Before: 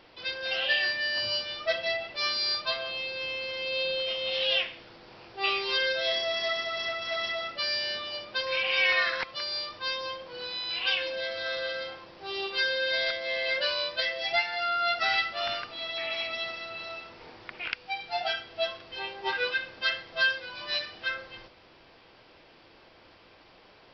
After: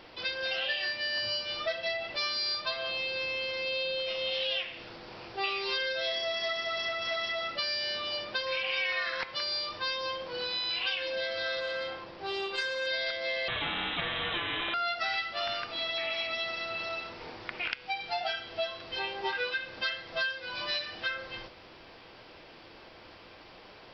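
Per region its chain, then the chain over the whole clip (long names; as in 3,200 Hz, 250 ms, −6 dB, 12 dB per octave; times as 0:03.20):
0:11.60–0:12.87: high-shelf EQ 5,000 Hz −8 dB + saturating transformer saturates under 1,600 Hz
0:13.48–0:14.74: high-frequency loss of the air 320 metres + voice inversion scrambler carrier 3,800 Hz + every bin compressed towards the loudest bin 4 to 1
whole clip: hum removal 136.8 Hz, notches 31; downward compressor 4 to 1, threshold −35 dBFS; level +4.5 dB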